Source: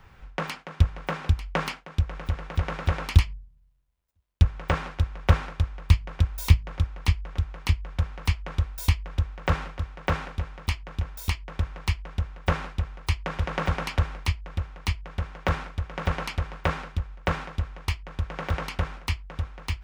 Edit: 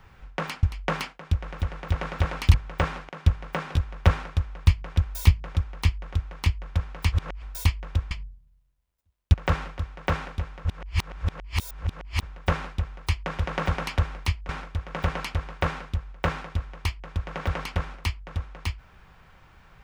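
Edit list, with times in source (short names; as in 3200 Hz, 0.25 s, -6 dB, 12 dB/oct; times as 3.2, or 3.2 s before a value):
0.63–1.3 move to 4.99
3.21–4.44 move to 9.34
8.35–8.65 reverse
10.65–12.23 reverse
14.49–15.52 cut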